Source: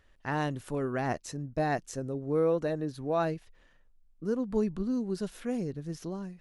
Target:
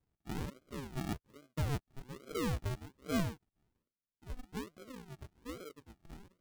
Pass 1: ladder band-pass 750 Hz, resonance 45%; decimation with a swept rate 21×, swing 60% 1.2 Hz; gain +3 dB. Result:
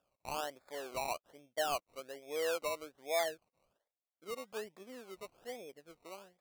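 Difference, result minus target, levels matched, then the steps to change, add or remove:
decimation with a swept rate: distortion -21 dB
change: decimation with a swept rate 68×, swing 60% 1.2 Hz

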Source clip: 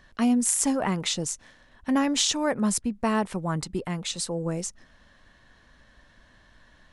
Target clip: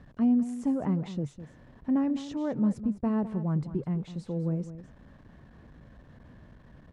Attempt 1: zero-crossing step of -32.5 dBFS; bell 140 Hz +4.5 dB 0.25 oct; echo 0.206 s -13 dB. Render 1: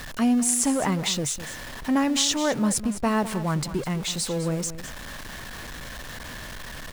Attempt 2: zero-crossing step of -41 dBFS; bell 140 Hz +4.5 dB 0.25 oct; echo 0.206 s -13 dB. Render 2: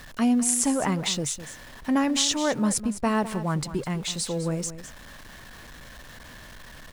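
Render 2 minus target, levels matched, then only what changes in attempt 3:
125 Hz band -4.0 dB
add after zero-crossing step: band-pass 140 Hz, Q 0.59

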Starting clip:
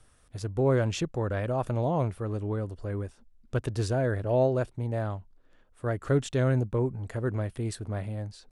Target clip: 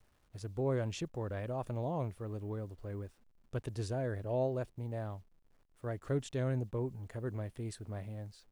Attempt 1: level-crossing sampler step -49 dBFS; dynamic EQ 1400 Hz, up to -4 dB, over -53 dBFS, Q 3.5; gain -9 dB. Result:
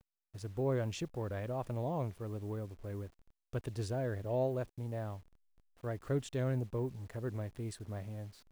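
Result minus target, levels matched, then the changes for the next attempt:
level-crossing sampler: distortion +10 dB
change: level-crossing sampler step -58.5 dBFS

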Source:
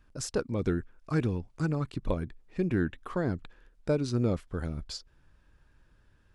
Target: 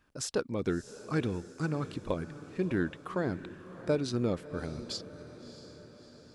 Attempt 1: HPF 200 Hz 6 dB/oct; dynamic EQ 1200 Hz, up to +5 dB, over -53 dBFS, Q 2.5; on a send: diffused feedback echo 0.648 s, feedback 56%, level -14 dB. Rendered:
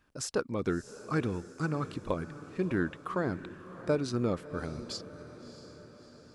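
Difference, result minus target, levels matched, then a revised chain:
1000 Hz band +3.0 dB
HPF 200 Hz 6 dB/oct; dynamic EQ 3500 Hz, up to +5 dB, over -53 dBFS, Q 2.5; on a send: diffused feedback echo 0.648 s, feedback 56%, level -14 dB

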